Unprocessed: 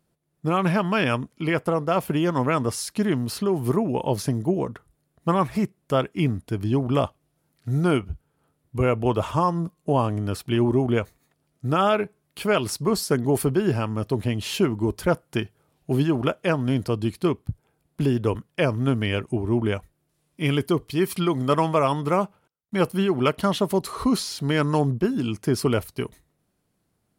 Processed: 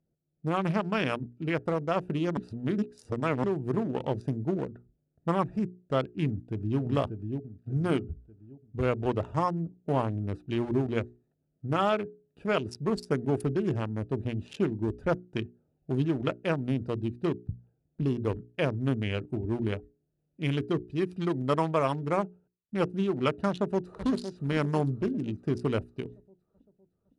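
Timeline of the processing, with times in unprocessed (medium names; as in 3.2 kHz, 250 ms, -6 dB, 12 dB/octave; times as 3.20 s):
2.37–3.44 s: reverse
6.26–6.80 s: echo throw 590 ms, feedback 40%, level -5 dB
23.48–24.06 s: echo throw 510 ms, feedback 55%, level -8.5 dB
whole clip: local Wiener filter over 41 samples; low-pass 9.4 kHz 24 dB/octave; hum notches 60/120/180/240/300/360/420 Hz; trim -5 dB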